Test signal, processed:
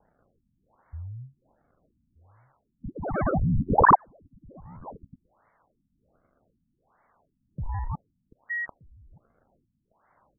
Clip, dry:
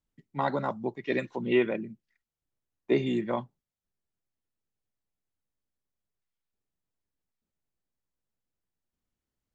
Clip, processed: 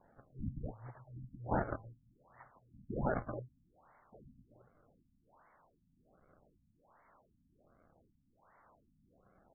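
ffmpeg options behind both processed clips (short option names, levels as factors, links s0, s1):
-filter_complex "[0:a]afftfilt=real='re*(1-between(b*sr/4096,130,1300))':imag='im*(1-between(b*sr/4096,130,1300))':win_size=4096:overlap=0.75,acrossover=split=130|960[s0][s1][s2];[s1]acompressor=threshold=0.00112:ratio=12[s3];[s0][s3][s2]amix=inputs=3:normalize=0,highshelf=f=3900:g=11,acrossover=split=2500[s4][s5];[s5]acompressor=threshold=0.0141:ratio=4:attack=1:release=60[s6];[s4][s6]amix=inputs=2:normalize=0,aexciter=amount=6.2:drive=2.3:freq=3600,acrusher=samples=27:mix=1:aa=0.000001:lfo=1:lforange=43.2:lforate=0.67,asplit=2[s7][s8];[s8]adelay=1224,volume=0.0794,highshelf=f=4000:g=-27.6[s9];[s7][s9]amix=inputs=2:normalize=0,crystalizer=i=0.5:c=0,firequalizer=gain_entry='entry(210,0);entry(380,-4);entry(590,5);entry(970,9);entry(1700,2);entry(6100,-24)':delay=0.05:min_phase=1,afftfilt=real='re*lt(b*sr/1024,260*pow(2300/260,0.5+0.5*sin(2*PI*1.3*pts/sr)))':imag='im*lt(b*sr/1024,260*pow(2300/260,0.5+0.5*sin(2*PI*1.3*pts/sr)))':win_size=1024:overlap=0.75"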